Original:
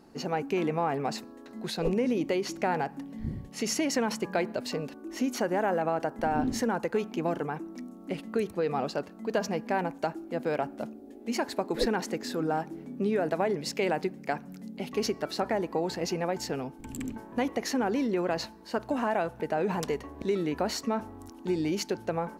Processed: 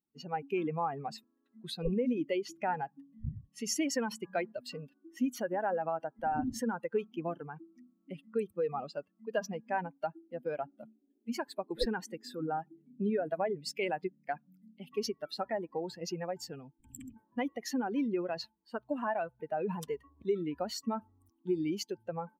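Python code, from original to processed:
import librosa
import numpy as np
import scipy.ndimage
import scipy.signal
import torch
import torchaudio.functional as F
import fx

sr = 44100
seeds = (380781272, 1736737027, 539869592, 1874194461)

y = fx.bin_expand(x, sr, power=2.0)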